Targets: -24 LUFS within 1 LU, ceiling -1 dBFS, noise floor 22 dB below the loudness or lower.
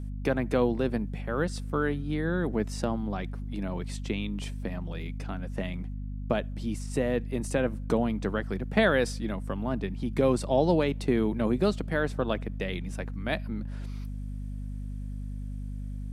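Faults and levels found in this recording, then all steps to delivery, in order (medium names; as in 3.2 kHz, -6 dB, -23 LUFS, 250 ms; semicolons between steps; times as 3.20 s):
hum 50 Hz; highest harmonic 250 Hz; hum level -33 dBFS; loudness -30.5 LUFS; peak level -9.0 dBFS; loudness target -24.0 LUFS
-> hum notches 50/100/150/200/250 Hz; trim +6.5 dB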